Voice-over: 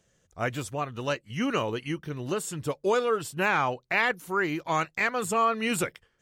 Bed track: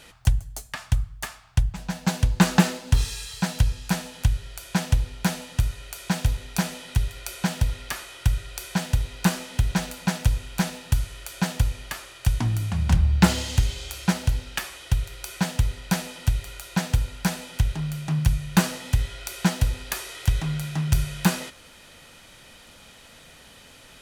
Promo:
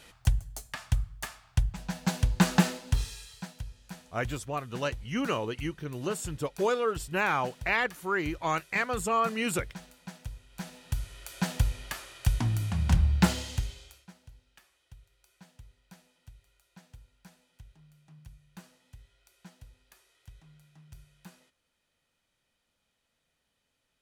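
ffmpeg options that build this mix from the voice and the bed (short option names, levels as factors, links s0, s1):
-filter_complex "[0:a]adelay=3750,volume=0.75[s0];[1:a]volume=3.35,afade=t=out:st=2.67:d=0.88:silence=0.188365,afade=t=in:st=10.48:d=1.13:silence=0.16788,afade=t=out:st=13.03:d=1.03:silence=0.0501187[s1];[s0][s1]amix=inputs=2:normalize=0"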